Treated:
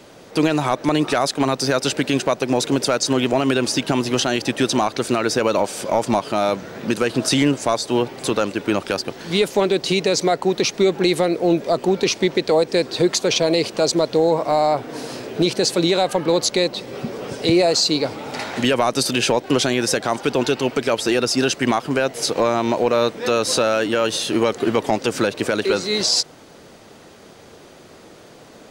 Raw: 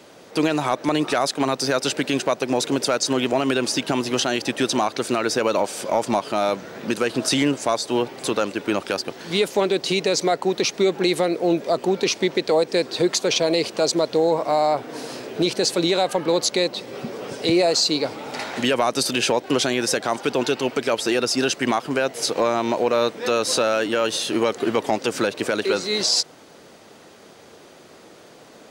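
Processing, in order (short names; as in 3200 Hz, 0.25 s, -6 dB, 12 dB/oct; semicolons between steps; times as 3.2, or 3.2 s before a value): low shelf 110 Hz +11.5 dB; gain +1.5 dB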